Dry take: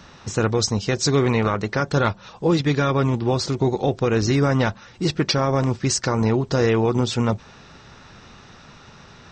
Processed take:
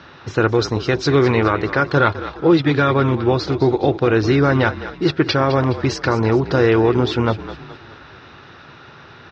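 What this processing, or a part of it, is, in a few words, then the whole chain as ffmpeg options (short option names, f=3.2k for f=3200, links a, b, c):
frequency-shifting delay pedal into a guitar cabinet: -filter_complex "[0:a]asplit=6[a][b][c][d][e][f];[b]adelay=209,afreqshift=-44,volume=-13dB[g];[c]adelay=418,afreqshift=-88,volume=-19.6dB[h];[d]adelay=627,afreqshift=-132,volume=-26.1dB[i];[e]adelay=836,afreqshift=-176,volume=-32.7dB[j];[f]adelay=1045,afreqshift=-220,volume=-39.2dB[k];[a][g][h][i][j][k]amix=inputs=6:normalize=0,highpass=86,equalizer=f=200:t=q:w=4:g=-9,equalizer=f=340:t=q:w=4:g=5,equalizer=f=1.5k:t=q:w=4:g=5,lowpass=f=4.3k:w=0.5412,lowpass=f=4.3k:w=1.3066,volume=3.5dB"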